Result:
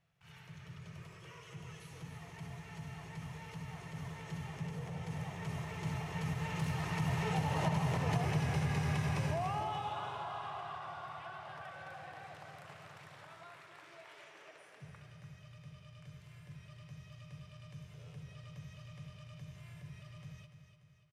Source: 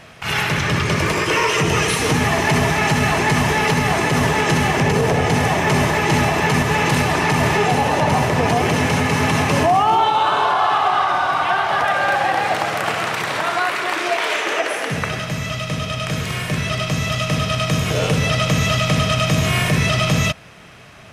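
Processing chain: Doppler pass-by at 8.18 s, 15 m/s, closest 2.2 m; resonant low shelf 190 Hz +6 dB, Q 3; compression 20:1, threshold -26 dBFS, peak gain reduction 19 dB; feedback delay 292 ms, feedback 49%, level -9 dB; trim -3.5 dB

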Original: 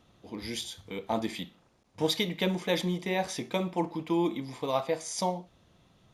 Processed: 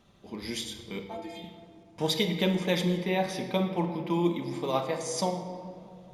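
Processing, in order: 1.03–1.44 s: inharmonic resonator 160 Hz, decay 0.22 s, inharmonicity 0.008; 2.97–4.10 s: peaking EQ 7.4 kHz -12.5 dB 0.46 oct; tape echo 213 ms, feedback 79%, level -18 dB, low-pass 1.4 kHz; simulated room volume 3300 m³, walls mixed, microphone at 1.2 m

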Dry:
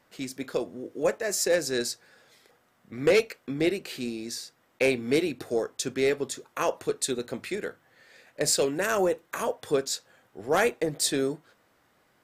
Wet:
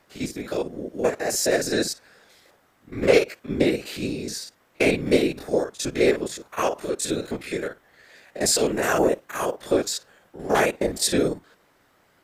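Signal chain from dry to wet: spectrogram pixelated in time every 50 ms; whisper effect; trim +5.5 dB

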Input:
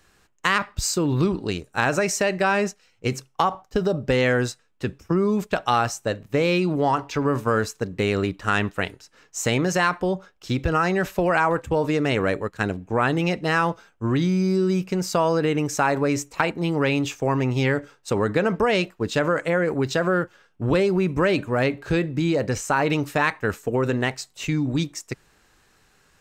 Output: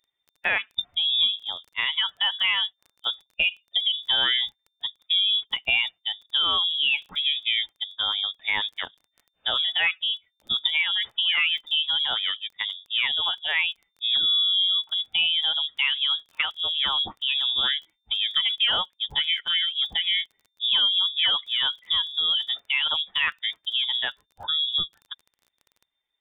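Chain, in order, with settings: expander on every frequency bin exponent 1.5; frequency inversion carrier 3.6 kHz; crackle 19 per s -40 dBFS

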